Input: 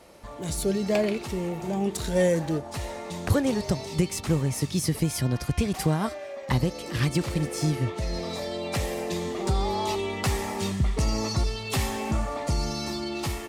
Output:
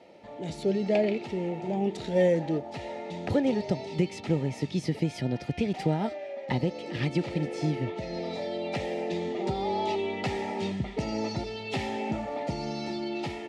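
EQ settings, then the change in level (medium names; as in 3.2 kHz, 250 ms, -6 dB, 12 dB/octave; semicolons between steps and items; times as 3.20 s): band-pass 170–3100 Hz; Butterworth band-stop 1.1 kHz, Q 4; peaking EQ 1.5 kHz -14.5 dB 0.25 oct; 0.0 dB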